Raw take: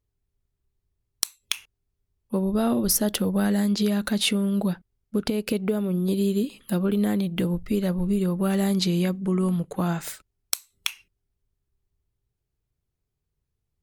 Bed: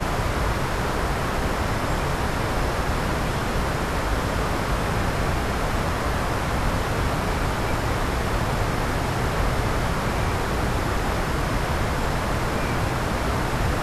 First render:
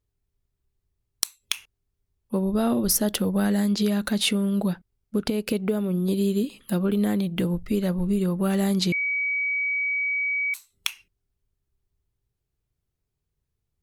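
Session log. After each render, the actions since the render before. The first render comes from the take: 8.92–10.54 s: bleep 2.27 kHz -22.5 dBFS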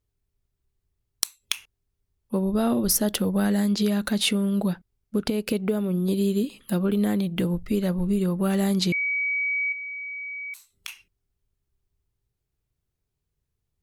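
9.72–10.88 s: compression 2.5:1, threshold -38 dBFS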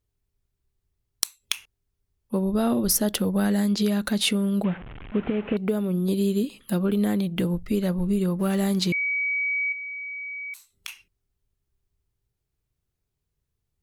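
4.64–5.57 s: one-bit delta coder 16 kbps, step -33.5 dBFS; 8.39–8.91 s: companding laws mixed up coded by A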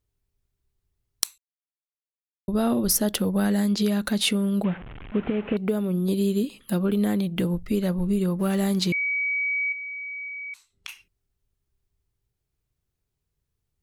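1.38–2.48 s: mute; 10.28–10.89 s: distance through air 67 m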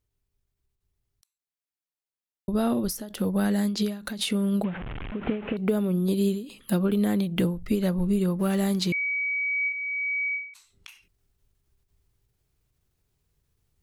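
gain riding 0.5 s; endings held to a fixed fall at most 110 dB/s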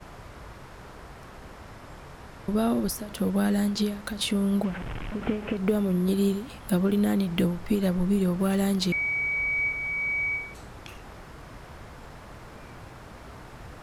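add bed -20.5 dB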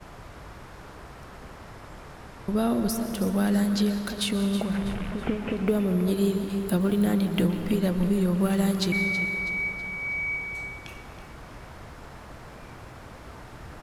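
feedback delay 324 ms, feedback 44%, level -12 dB; plate-style reverb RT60 2.9 s, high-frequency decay 0.55×, pre-delay 105 ms, DRR 8.5 dB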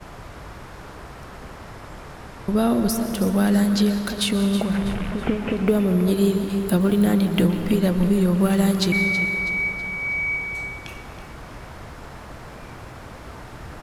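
trim +5 dB

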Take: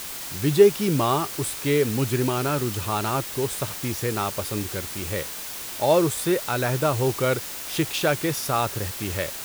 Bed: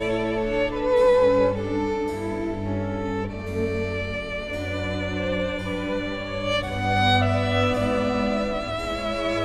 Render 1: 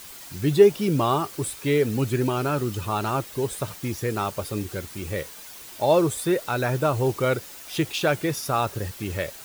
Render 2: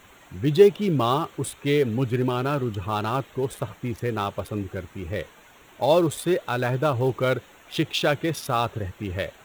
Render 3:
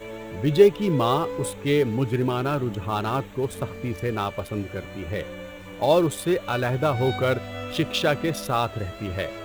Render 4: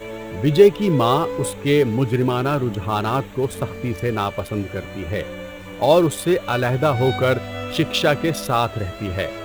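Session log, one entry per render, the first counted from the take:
noise reduction 9 dB, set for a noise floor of -35 dBFS
local Wiener filter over 9 samples; dynamic bell 3.5 kHz, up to +6 dB, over -50 dBFS, Q 2.2
add bed -12.5 dB
trim +4.5 dB; peak limiter -2 dBFS, peak gain reduction 1.5 dB

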